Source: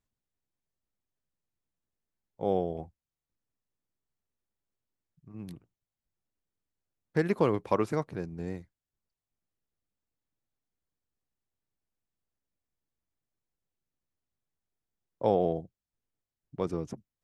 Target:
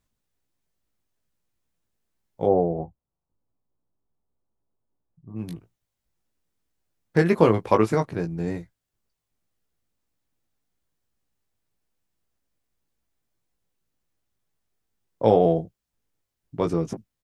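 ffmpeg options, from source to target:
-filter_complex "[0:a]asplit=3[s0][s1][s2];[s0]afade=t=out:st=2.45:d=0.02[s3];[s1]lowpass=f=1100:w=0.5412,lowpass=f=1100:w=1.3066,afade=t=in:st=2.45:d=0.02,afade=t=out:st=5.35:d=0.02[s4];[s2]afade=t=in:st=5.35:d=0.02[s5];[s3][s4][s5]amix=inputs=3:normalize=0,asplit=2[s6][s7];[s7]adelay=18,volume=0.501[s8];[s6][s8]amix=inputs=2:normalize=0,volume=2.37"

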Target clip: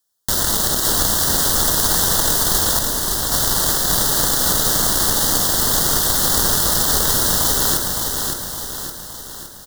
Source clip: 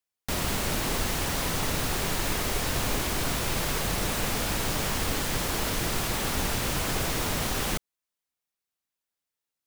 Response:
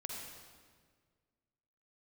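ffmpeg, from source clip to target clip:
-filter_complex "[0:a]lowpass=f=4000:p=1,bandreject=f=56.36:t=h:w=4,bandreject=f=112.72:t=h:w=4,bandreject=f=169.08:t=h:w=4,bandreject=f=225.44:t=h:w=4,bandreject=f=281.8:t=h:w=4,bandreject=f=338.16:t=h:w=4,bandreject=f=394.52:t=h:w=4,bandreject=f=450.88:t=h:w=4,bandreject=f=507.24:t=h:w=4,bandreject=f=563.6:t=h:w=4,bandreject=f=619.96:t=h:w=4,bandreject=f=676.32:t=h:w=4,bandreject=f=732.68:t=h:w=4,bandreject=f=789.04:t=h:w=4,bandreject=f=845.4:t=h:w=4,bandreject=f=901.76:t=h:w=4,bandreject=f=958.12:t=h:w=4,bandreject=f=1014.48:t=h:w=4,bandreject=f=1070.84:t=h:w=4,bandreject=f=1127.2:t=h:w=4,bandreject=f=1183.56:t=h:w=4,bandreject=f=1239.92:t=h:w=4,bandreject=f=1296.28:t=h:w=4,bandreject=f=1352.64:t=h:w=4,bandreject=f=1409:t=h:w=4,bandreject=f=1465.36:t=h:w=4,bandreject=f=1521.72:t=h:w=4,bandreject=f=1578.08:t=h:w=4,bandreject=f=1634.44:t=h:w=4,bandreject=f=1690.8:t=h:w=4,bandreject=f=1747.16:t=h:w=4,bandreject=f=1803.52:t=h:w=4,bandreject=f=1859.88:t=h:w=4,bandreject=f=1916.24:t=h:w=4,bandreject=f=1972.6:t=h:w=4,bandreject=f=2028.96:t=h:w=4,asplit=2[s0][s1];[s1]alimiter=limit=0.0668:level=0:latency=1:release=274,volume=1.33[s2];[s0][s2]amix=inputs=2:normalize=0,crystalizer=i=3.5:c=0,asettb=1/sr,asplit=3[s3][s4][s5];[s3]atrim=end=2.794[s6];[s4]atrim=start=2.79:end=3.32,asetpts=PTS-STARTPTS,afade=t=in:d=0.004:c=qsin,afade=t=out:st=0.526:d=0.004:c=qsin,asoftclip=type=hard:threshold=0.0562[s7];[s5]atrim=start=3.316[s8];[s6][s7]acrossfade=d=0.004:c1=hsin:c2=qsin[s9];[s9][s8]acrossfade=d=0.004:c1=qsin:c2=hsin,aeval=exprs='0.447*(cos(1*acos(clip(val(0)/0.447,-1,1)))-cos(1*PI/2))+0.112*(cos(7*acos(clip(val(0)/0.447,-1,1)))-cos(7*PI/2))':c=same,asoftclip=type=tanh:threshold=0.316,asuperstop=centerf=2400:order=4:qfactor=1.5,asplit=2[s10][s11];[s11]aecho=0:1:564|1128|1692|2256|2820|3384|3948:0.596|0.31|0.161|0.0838|0.0436|0.0226|0.0118[s12];[s10][s12]amix=inputs=2:normalize=0,volume=1.88"

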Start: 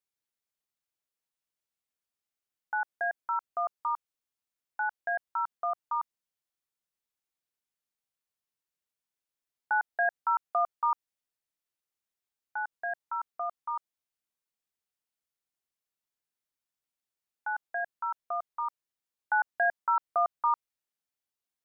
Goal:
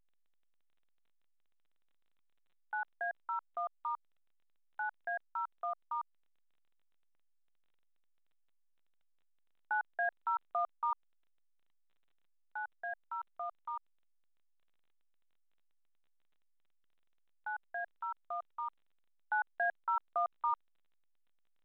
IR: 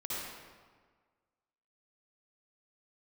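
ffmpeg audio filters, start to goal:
-af "volume=0.447" -ar 8000 -c:a pcm_alaw

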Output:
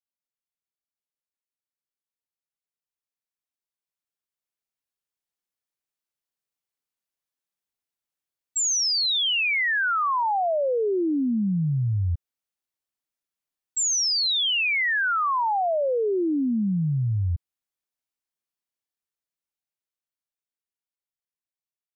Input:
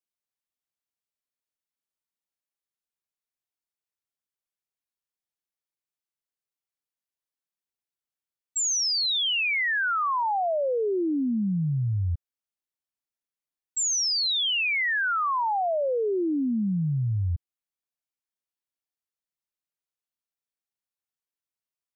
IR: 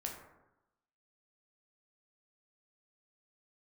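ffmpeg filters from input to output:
-af "dynaudnorm=f=910:g=9:m=3.35,volume=0.376"

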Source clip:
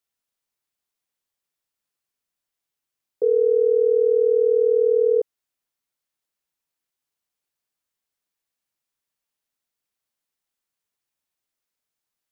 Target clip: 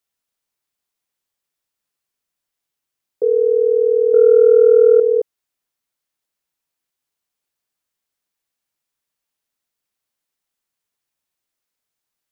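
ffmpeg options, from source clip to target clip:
-filter_complex "[0:a]asettb=1/sr,asplit=3[s0][s1][s2];[s0]atrim=end=4.144[s3];[s1]atrim=start=4.14:end=5,asetpts=PTS-STARTPTS,afade=t=in:d=0.004:c=qsin,afade=t=out:st=0.856:d=0.004:c=qsin,acontrast=42[s4];[s2]atrim=start=4.996[s5];[s3][s4]acrossfade=d=0.004:c1=hsin:c2=qsin[s6];[s6][s5]acrossfade=d=0.004:c1=qsin:c2=hsin,volume=1.41"

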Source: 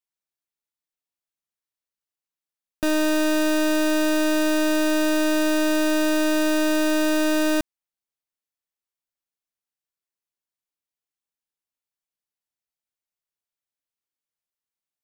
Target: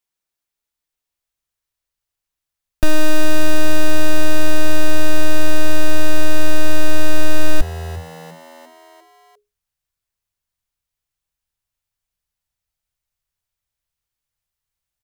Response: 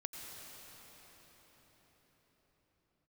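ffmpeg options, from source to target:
-filter_complex "[0:a]asplit=6[s0][s1][s2][s3][s4][s5];[s1]adelay=349,afreqshift=83,volume=0.0891[s6];[s2]adelay=698,afreqshift=166,volume=0.055[s7];[s3]adelay=1047,afreqshift=249,volume=0.0343[s8];[s4]adelay=1396,afreqshift=332,volume=0.0211[s9];[s5]adelay=1745,afreqshift=415,volume=0.0132[s10];[s0][s6][s7][s8][s9][s10]amix=inputs=6:normalize=0,asubboost=boost=10.5:cutoff=84,acontrast=60,volume=1.12"

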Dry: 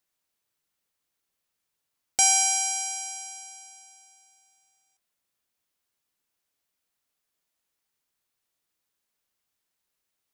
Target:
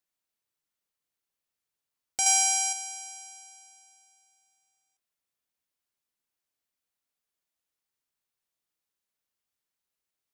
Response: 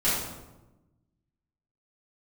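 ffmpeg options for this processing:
-filter_complex "[0:a]asettb=1/sr,asplit=3[s0][s1][s2];[s0]atrim=end=2.264[s3];[s1]atrim=start=2.26:end=2.73,asetpts=PTS-STARTPTS,afade=t=in:d=0.004:c=qsin,afade=t=out:st=0.466:d=0.004:c=qsin,acontrast=46[s4];[s2]atrim=start=2.726[s5];[s3][s4]acrossfade=d=0.004:c1=hsin:c2=qsin[s6];[s6][s5]acrossfade=d=0.004:c1=qsin:c2=hsin,volume=0.473"

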